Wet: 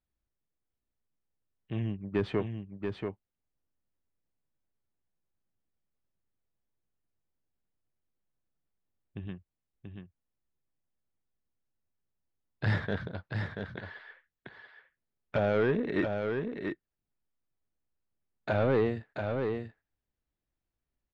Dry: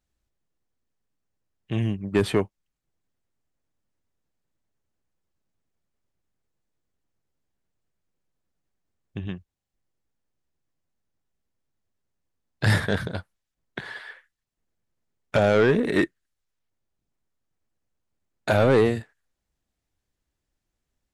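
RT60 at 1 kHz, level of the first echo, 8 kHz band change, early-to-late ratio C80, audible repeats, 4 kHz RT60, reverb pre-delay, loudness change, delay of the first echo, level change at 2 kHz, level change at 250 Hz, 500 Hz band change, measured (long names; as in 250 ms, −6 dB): no reverb audible, −5.5 dB, below −20 dB, no reverb audible, 1, no reverb audible, no reverb audible, −9.5 dB, 684 ms, −8.0 dB, −6.5 dB, −7.0 dB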